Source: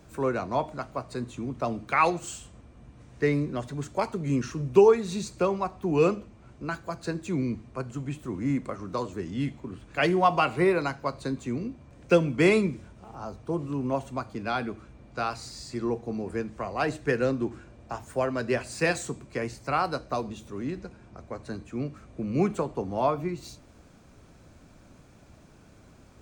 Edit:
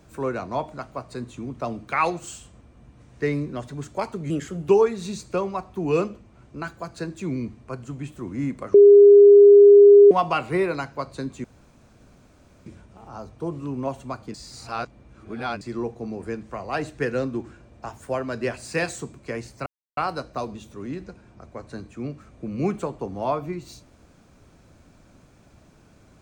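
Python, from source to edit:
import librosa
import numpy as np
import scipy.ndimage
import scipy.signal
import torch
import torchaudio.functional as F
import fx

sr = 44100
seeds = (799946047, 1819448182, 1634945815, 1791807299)

y = fx.edit(x, sr, fx.speed_span(start_s=4.3, length_s=0.45, speed=1.18),
    fx.bleep(start_s=8.81, length_s=1.37, hz=406.0, db=-6.5),
    fx.room_tone_fill(start_s=11.51, length_s=1.22),
    fx.reverse_span(start_s=14.41, length_s=1.27),
    fx.insert_silence(at_s=19.73, length_s=0.31), tone=tone)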